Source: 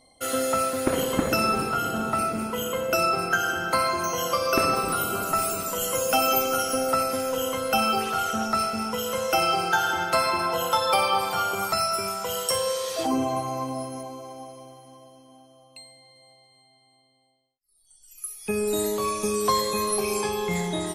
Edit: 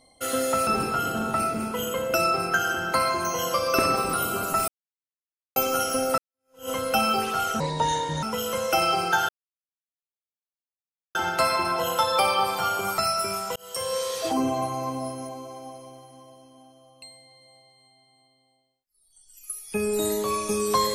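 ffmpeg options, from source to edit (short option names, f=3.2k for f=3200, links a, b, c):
-filter_complex "[0:a]asplit=9[a][b][c][d][e][f][g][h][i];[a]atrim=end=0.672[j];[b]atrim=start=1.458:end=5.47,asetpts=PTS-STARTPTS,afade=t=out:st=4.008:d=0.004:c=hsin[k];[c]atrim=start=5.47:end=6.35,asetpts=PTS-STARTPTS,volume=0[l];[d]atrim=start=6.35:end=6.97,asetpts=PTS-STARTPTS,afade=t=in:d=0.004:c=hsin,afade=t=out:st=0.616:d=0.004:c=hsin[m];[e]atrim=start=6.97:end=8.394,asetpts=PTS-STARTPTS,afade=t=in:d=0.52:c=exp[n];[f]atrim=start=8.39:end=8.83,asetpts=PTS-STARTPTS,asetrate=30870,aresample=44100[o];[g]atrim=start=8.826:end=9.89,asetpts=PTS-STARTPTS,afade=t=out:st=1.06:d=0.004:c=hsin,apad=pad_dur=1.86[p];[h]atrim=start=9.89:end=12.3,asetpts=PTS-STARTPTS,afade=t=in:d=0.004:c=hsin,afade=t=out:st=2.406:d=0.004:c=hsin[q];[i]atrim=start=12.3,asetpts=PTS-STARTPTS,afade=t=in:d=0.45[r];[k][l][m][n]concat=n=4:v=0:a=1[s];[j][s]acrossfade=d=0.004:c1=hsin:c2=hsin[t];[t][o]acrossfade=d=0.004:c1=hsin:c2=hsin[u];[p][q][r]concat=n=3:v=0:a=1[v];[u][v]acrossfade=d=0.004:c1=hsin:c2=hsin"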